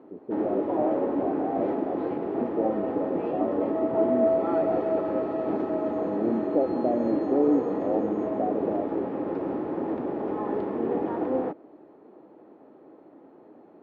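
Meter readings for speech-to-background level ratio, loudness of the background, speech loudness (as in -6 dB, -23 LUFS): -2.5 dB, -28.0 LUFS, -30.5 LUFS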